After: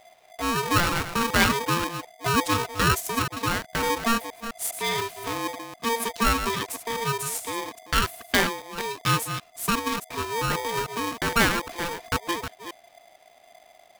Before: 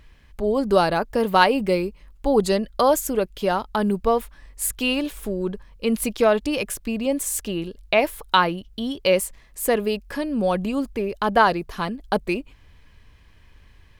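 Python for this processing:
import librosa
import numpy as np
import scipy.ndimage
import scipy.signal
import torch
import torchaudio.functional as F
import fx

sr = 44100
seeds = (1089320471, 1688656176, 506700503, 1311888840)

y = fx.reverse_delay(x, sr, ms=205, wet_db=-9.0)
y = y * np.sign(np.sin(2.0 * np.pi * 690.0 * np.arange(len(y)) / sr))
y = y * 10.0 ** (-4.5 / 20.0)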